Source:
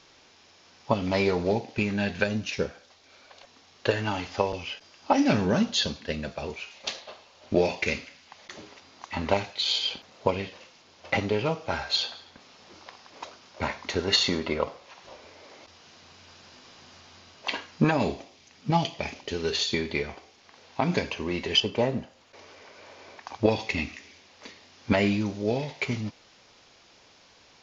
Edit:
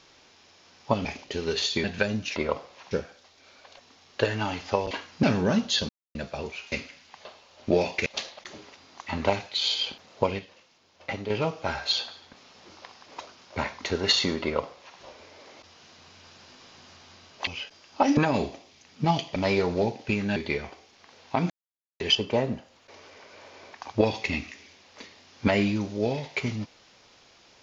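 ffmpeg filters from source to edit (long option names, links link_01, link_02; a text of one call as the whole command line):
ffmpeg -i in.wav -filter_complex "[0:a]asplit=21[link_01][link_02][link_03][link_04][link_05][link_06][link_07][link_08][link_09][link_10][link_11][link_12][link_13][link_14][link_15][link_16][link_17][link_18][link_19][link_20][link_21];[link_01]atrim=end=1.052[link_22];[link_02]atrim=start=19.018:end=19.812[link_23];[link_03]atrim=start=2.048:end=2.572[link_24];[link_04]atrim=start=14.468:end=15.022[link_25];[link_05]atrim=start=2.568:end=4.572[link_26];[link_06]atrim=start=17.508:end=17.832[link_27];[link_07]atrim=start=5.268:end=5.93,asetpts=PTS-STARTPTS,afade=type=out:start_time=0.658:duration=0.004:curve=hsin[link_28];[link_08]atrim=start=5.93:end=6.19,asetpts=PTS-STARTPTS,volume=0[link_29];[link_09]atrim=start=6.19:end=6.762,asetpts=PTS-STARTPTS,afade=type=in:duration=0.004:curve=hsin[link_30];[link_10]atrim=start=7.898:end=8.432[link_31];[link_11]atrim=start=7.088:end=7.902[link_32];[link_12]atrim=start=6.758:end=7.092[link_33];[link_13]atrim=start=8.428:end=10.432[link_34];[link_14]atrim=start=10.428:end=11.342,asetpts=PTS-STARTPTS,volume=-7dB[link_35];[link_15]atrim=start=11.338:end=17.512[link_36];[link_16]atrim=start=4.568:end=5.272[link_37];[link_17]atrim=start=17.828:end=19.022[link_38];[link_18]atrim=start=1.048:end=2.052[link_39];[link_19]atrim=start=19.808:end=20.95,asetpts=PTS-STARTPTS,afade=type=out:start_time=1.138:duration=0.004:curve=hsin[link_40];[link_20]atrim=start=20.95:end=21.45,asetpts=PTS-STARTPTS,volume=0[link_41];[link_21]atrim=start=21.45,asetpts=PTS-STARTPTS,afade=type=in:duration=0.004:curve=hsin[link_42];[link_22][link_23]acrossfade=duration=0.004:curve1=hsin:curve2=hsin[link_43];[link_43][link_24]acrossfade=duration=0.004:curve1=hsin:curve2=hsin[link_44];[link_44][link_25]acrossfade=duration=0.004:curve1=hsin:curve2=hsin[link_45];[link_45][link_26]acrossfade=duration=0.004:curve1=hsin:curve2=hsin[link_46];[link_46][link_27]acrossfade=duration=0.004:curve1=hsin:curve2=hsin[link_47];[link_28][link_29][link_30]concat=n=3:v=0:a=1[link_48];[link_47][link_48]acrossfade=duration=0.004:curve1=hsin:curve2=hsin[link_49];[link_49][link_31]acrossfade=duration=0.004:curve1=hsin:curve2=hsin[link_50];[link_50][link_32]acrossfade=duration=0.004:curve1=hsin:curve2=hsin[link_51];[link_51][link_33]acrossfade=duration=0.004:curve1=hsin:curve2=hsin[link_52];[link_52][link_34]acrossfade=duration=0.004:curve1=hsin:curve2=hsin[link_53];[link_53][link_35]acrossfade=duration=0.004:curve1=hsin:curve2=hsin[link_54];[link_54][link_36]acrossfade=duration=0.004:curve1=hsin:curve2=hsin[link_55];[link_55][link_37]acrossfade=duration=0.004:curve1=hsin:curve2=hsin[link_56];[link_56][link_38]acrossfade=duration=0.004:curve1=hsin:curve2=hsin[link_57];[link_57][link_39]acrossfade=duration=0.004:curve1=hsin:curve2=hsin[link_58];[link_40][link_41][link_42]concat=n=3:v=0:a=1[link_59];[link_58][link_59]acrossfade=duration=0.004:curve1=hsin:curve2=hsin" out.wav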